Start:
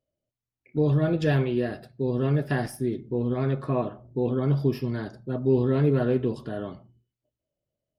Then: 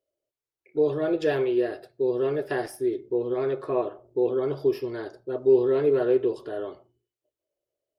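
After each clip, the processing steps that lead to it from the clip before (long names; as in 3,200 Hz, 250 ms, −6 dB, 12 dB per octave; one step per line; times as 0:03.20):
low shelf with overshoot 280 Hz −10.5 dB, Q 3
level −1.5 dB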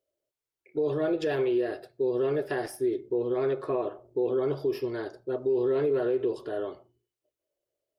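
brickwall limiter −19.5 dBFS, peak gain reduction 9 dB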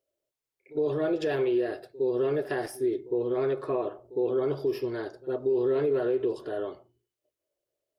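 backwards echo 60 ms −19 dB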